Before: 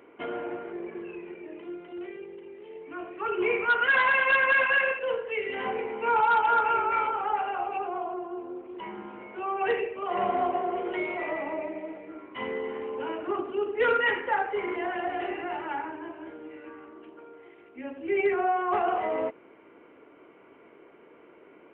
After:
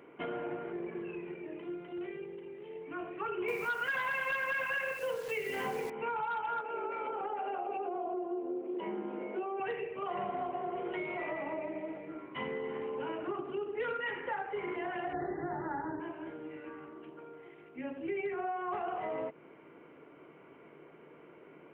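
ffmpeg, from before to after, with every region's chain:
ffmpeg -i in.wav -filter_complex "[0:a]asettb=1/sr,asplit=3[link_01][link_02][link_03];[link_01]atrim=end=3.484[link_04];[link_02]atrim=start=3.48:end=5.9,asetpts=PTS-STARTPTS,afade=type=in:duration=0.004:curve=qsin,afade=type=out:start_time=2.416:duration=0.004:curve=qsin,acontrast=82,acrusher=bits=7:dc=4:mix=0:aa=0.000001[link_05];[link_03]atrim=start=5.896[link_06];[link_04][link_05]acrossfade=duration=0.004:curve1=hsin:curve2=qsin[link_07];[link_07][link_06]acrossfade=duration=0.004:curve1=qsin:curve2=hsin,asettb=1/sr,asplit=3[link_08][link_09][link_10];[link_08]atrim=end=6.614[link_11];[link_09]atrim=start=6.61:end=9.6,asetpts=PTS-STARTPTS,afade=type=in:duration=0.004:curve=qsin,afade=type=out:start_time=2.986:duration=0.004:curve=qsin,highpass=frequency=220:width=0.5412,highpass=frequency=220:width=1.3066,acompressor=threshold=-30dB:ratio=4:attack=3.2:release=140:knee=1:detection=peak,lowshelf=frequency=780:width_type=q:width=1.5:gain=7[link_12];[link_10]atrim=start=9.596[link_13];[link_11][link_12]acrossfade=duration=0.004:curve1=hsin:curve2=qsin[link_14];[link_14][link_13]acrossfade=duration=0.004:curve1=qsin:curve2=hsin,asettb=1/sr,asplit=3[link_15][link_16][link_17];[link_15]atrim=end=15.134[link_18];[link_16]atrim=start=15.13:end=16,asetpts=PTS-STARTPTS,afade=type=in:duration=0.004:curve=qsin,afade=type=out:start_time=0.866:duration=0.004:curve=qsin,asuperstop=centerf=2800:order=12:qfactor=1.4,lowshelf=frequency=320:gain=11.5[link_19];[link_17]atrim=start=15.996[link_20];[link_18][link_19]acrossfade=duration=0.004:curve1=hsin:curve2=qsin[link_21];[link_21][link_20]acrossfade=duration=0.004:curve1=qsin:curve2=hsin,equalizer=frequency=150:width_type=o:width=0.41:gain=13,acompressor=threshold=-32dB:ratio=5,volume=-2dB" out.wav

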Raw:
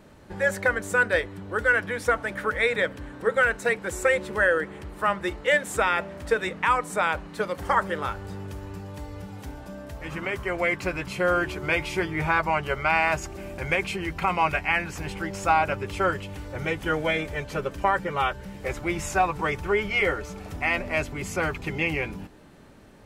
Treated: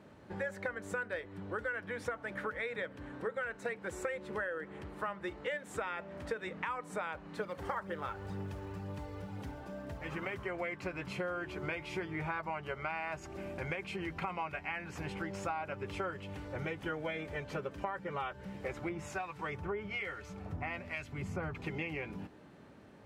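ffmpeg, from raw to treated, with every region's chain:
ffmpeg -i in.wav -filter_complex "[0:a]asettb=1/sr,asplit=3[link_01][link_02][link_03];[link_01]atrim=end=7.414[link_04];[link_02]atrim=start=7.41:end=10.39,asetpts=PTS-STARTPTS,afade=type=in:duration=0.004:curve=qsin,afade=type=out:start_time=2.976:duration=0.004:curve=qsin,acrusher=bits=7:mode=log:mix=0:aa=0.000001,aphaser=in_gain=1:out_gain=1:delay=2.7:decay=0.31:speed=2:type=triangular[link_05];[link_03]atrim=start=10.386[link_06];[link_04][link_05]acrossfade=duration=0.004:curve1=hsin:curve2=qsin[link_07];[link_07][link_06]acrossfade=duration=0.004:curve1=qsin:curve2=hsin,asettb=1/sr,asplit=3[link_08][link_09][link_10];[link_08]atrim=end=18.894[link_11];[link_09]atrim=start=18.89:end=21.55,asetpts=PTS-STARTPTS,afade=type=in:duration=0.004:curve=qsin,afade=type=out:start_time=2.656:duration=0.004:curve=qsin,highpass=72,asubboost=boost=4.5:cutoff=170,acrossover=split=1500[link_12][link_13];[link_12]aeval=exprs='val(0)*(1-0.7/2+0.7/2*cos(2*PI*1.2*n/s))':channel_layout=same[link_14];[link_13]aeval=exprs='val(0)*(1-0.7/2-0.7/2*cos(2*PI*1.2*n/s))':channel_layout=same[link_15];[link_14][link_15]amix=inputs=2:normalize=0[link_16];[link_10]atrim=start=21.546[link_17];[link_11][link_16]acrossfade=duration=0.004:curve1=hsin:curve2=qsin[link_18];[link_18][link_17]acrossfade=duration=0.004:curve1=qsin:curve2=hsin,highpass=87,acompressor=threshold=-30dB:ratio=6,highshelf=frequency=5500:gain=-12,volume=-4.5dB" out.wav

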